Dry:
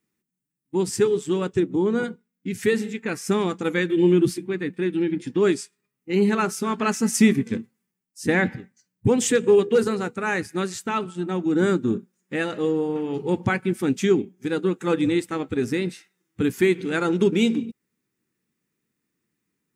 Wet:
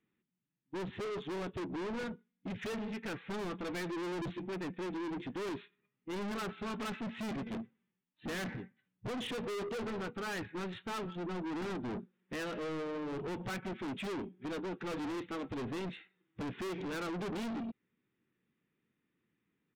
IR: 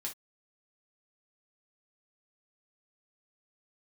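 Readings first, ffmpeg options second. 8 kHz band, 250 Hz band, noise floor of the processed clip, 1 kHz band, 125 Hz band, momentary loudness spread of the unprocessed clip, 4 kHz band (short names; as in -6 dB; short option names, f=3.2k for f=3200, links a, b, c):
-21.5 dB, -16.5 dB, -85 dBFS, -12.0 dB, -16.0 dB, 10 LU, -11.5 dB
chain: -af "aresample=8000,aresample=44100,aeval=exprs='(tanh(56.2*val(0)+0.05)-tanh(0.05))/56.2':c=same,volume=-2dB"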